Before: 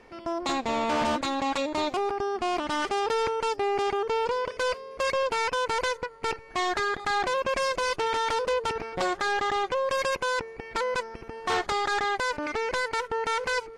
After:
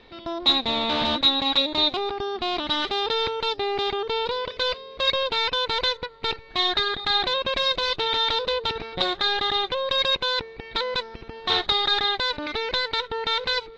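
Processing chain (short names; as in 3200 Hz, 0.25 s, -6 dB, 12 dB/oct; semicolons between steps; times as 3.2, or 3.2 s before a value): synth low-pass 3800 Hz, resonance Q 15; low shelf 240 Hz +6 dB; gain -1.5 dB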